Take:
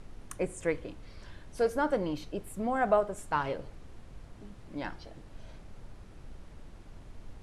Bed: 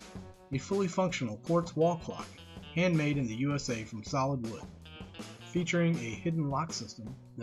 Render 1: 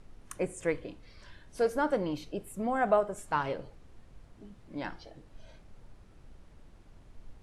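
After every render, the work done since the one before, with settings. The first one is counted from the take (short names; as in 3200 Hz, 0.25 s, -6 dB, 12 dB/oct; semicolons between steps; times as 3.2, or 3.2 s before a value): noise print and reduce 6 dB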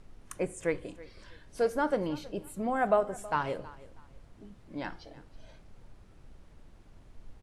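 feedback echo 0.322 s, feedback 27%, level -19.5 dB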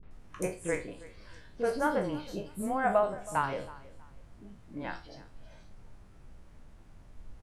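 spectral trails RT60 0.31 s; three bands offset in time lows, mids, highs 30/110 ms, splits 400/3700 Hz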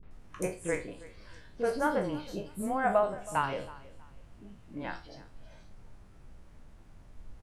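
3.13–4.86 bell 2800 Hz +6 dB 0.22 oct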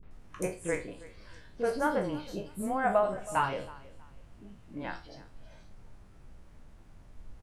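3.03–3.49 doubler 16 ms -5 dB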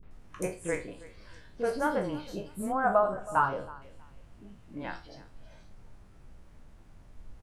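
2.72–3.82 resonant high shelf 1700 Hz -6.5 dB, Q 3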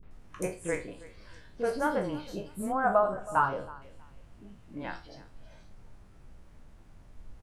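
nothing audible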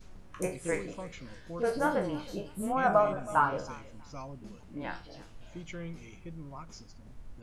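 add bed -13 dB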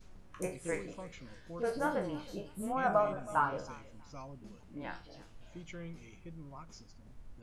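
gain -4.5 dB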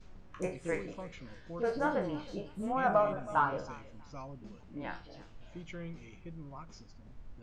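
running mean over 4 samples; in parallel at -11 dB: soft clip -24 dBFS, distortion -15 dB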